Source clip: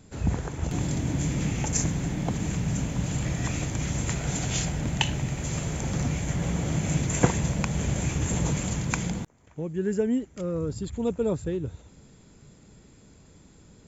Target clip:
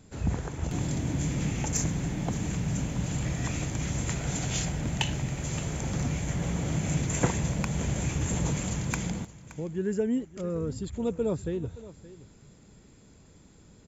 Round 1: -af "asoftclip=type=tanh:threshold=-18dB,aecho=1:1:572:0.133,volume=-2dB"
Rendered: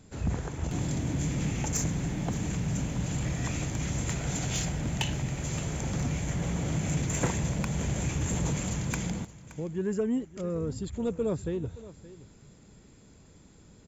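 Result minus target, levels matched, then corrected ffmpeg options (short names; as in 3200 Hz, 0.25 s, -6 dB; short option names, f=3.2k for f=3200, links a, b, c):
soft clip: distortion +6 dB
-af "asoftclip=type=tanh:threshold=-11.5dB,aecho=1:1:572:0.133,volume=-2dB"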